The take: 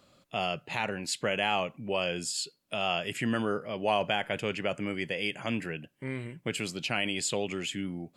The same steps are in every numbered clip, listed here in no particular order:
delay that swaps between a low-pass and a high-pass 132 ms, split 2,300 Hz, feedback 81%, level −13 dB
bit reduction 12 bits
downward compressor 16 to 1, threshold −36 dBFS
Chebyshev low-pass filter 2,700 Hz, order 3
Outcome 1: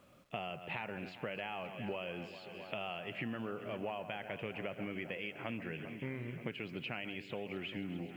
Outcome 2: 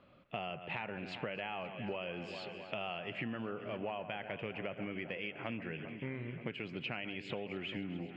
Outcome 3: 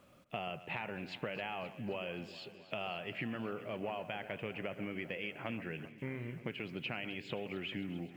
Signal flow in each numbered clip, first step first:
delay that swaps between a low-pass and a high-pass, then downward compressor, then Chebyshev low-pass filter, then bit reduction
delay that swaps between a low-pass and a high-pass, then bit reduction, then Chebyshev low-pass filter, then downward compressor
Chebyshev low-pass filter, then downward compressor, then bit reduction, then delay that swaps between a low-pass and a high-pass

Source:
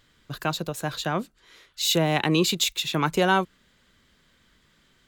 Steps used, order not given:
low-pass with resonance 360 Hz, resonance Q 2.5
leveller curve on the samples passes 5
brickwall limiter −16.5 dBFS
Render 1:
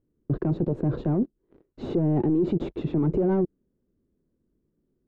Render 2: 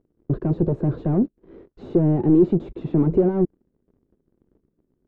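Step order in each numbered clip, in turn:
leveller curve on the samples, then low-pass with resonance, then brickwall limiter
brickwall limiter, then leveller curve on the samples, then low-pass with resonance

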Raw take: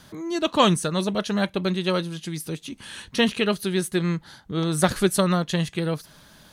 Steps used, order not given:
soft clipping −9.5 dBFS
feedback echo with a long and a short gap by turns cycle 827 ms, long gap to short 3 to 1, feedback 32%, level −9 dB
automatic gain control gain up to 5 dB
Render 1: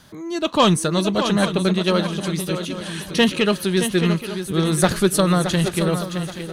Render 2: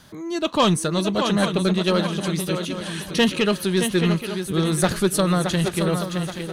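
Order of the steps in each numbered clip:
soft clipping, then feedback echo with a long and a short gap by turns, then automatic gain control
feedback echo with a long and a short gap by turns, then automatic gain control, then soft clipping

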